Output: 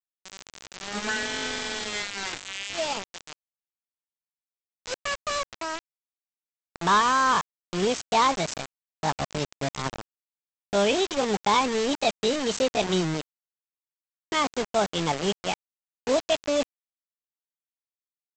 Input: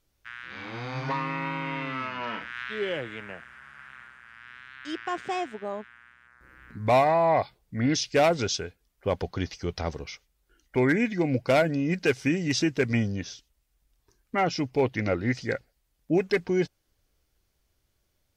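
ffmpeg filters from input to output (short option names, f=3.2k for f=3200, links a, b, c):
-af "asetrate=70004,aresample=44100,atempo=0.629961,aresample=16000,acrusher=bits=4:mix=0:aa=0.000001,aresample=44100"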